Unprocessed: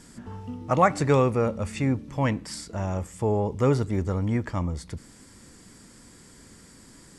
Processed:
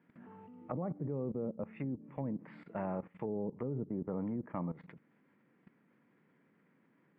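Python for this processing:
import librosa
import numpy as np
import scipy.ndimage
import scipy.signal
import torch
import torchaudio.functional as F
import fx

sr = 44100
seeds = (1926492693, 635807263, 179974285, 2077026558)

y = scipy.signal.sosfilt(scipy.signal.ellip(3, 1.0, 40, [150.0, 2400.0], 'bandpass', fs=sr, output='sos'), x)
y = fx.env_lowpass_down(y, sr, base_hz=380.0, full_db=-23.0)
y = fx.level_steps(y, sr, step_db=17)
y = y * librosa.db_to_amplitude(-2.5)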